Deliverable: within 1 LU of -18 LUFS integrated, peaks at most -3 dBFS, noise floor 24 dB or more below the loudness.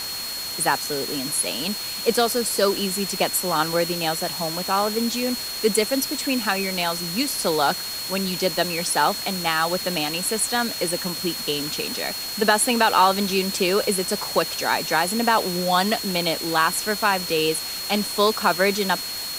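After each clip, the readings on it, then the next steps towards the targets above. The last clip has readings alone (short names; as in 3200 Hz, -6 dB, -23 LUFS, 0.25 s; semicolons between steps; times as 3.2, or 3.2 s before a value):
steady tone 4300 Hz; tone level -30 dBFS; noise floor -31 dBFS; noise floor target -46 dBFS; loudness -22.0 LUFS; peak -4.0 dBFS; loudness target -18.0 LUFS
-> notch 4300 Hz, Q 30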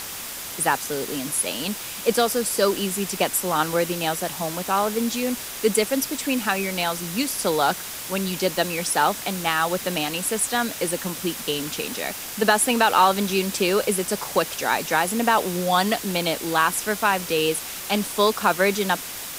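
steady tone none; noise floor -34 dBFS; noise floor target -47 dBFS
-> denoiser 13 dB, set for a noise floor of -34 dBFS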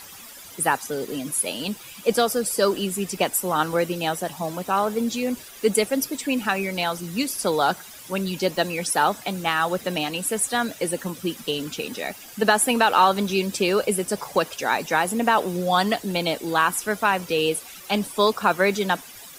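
noise floor -43 dBFS; noise floor target -48 dBFS
-> denoiser 6 dB, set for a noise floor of -43 dBFS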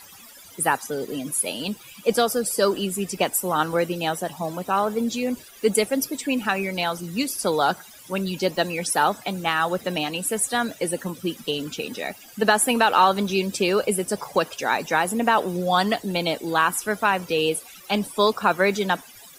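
noise floor -46 dBFS; noise floor target -48 dBFS
-> denoiser 6 dB, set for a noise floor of -46 dBFS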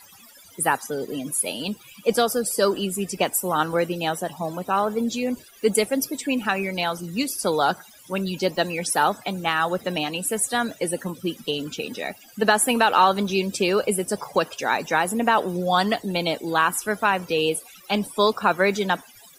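noise floor -49 dBFS; loudness -23.5 LUFS; peak -3.5 dBFS; loudness target -18.0 LUFS
-> gain +5.5 dB; limiter -3 dBFS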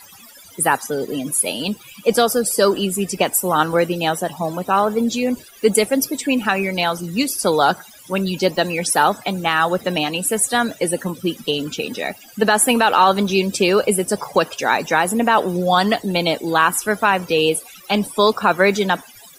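loudness -18.5 LUFS; peak -3.0 dBFS; noise floor -44 dBFS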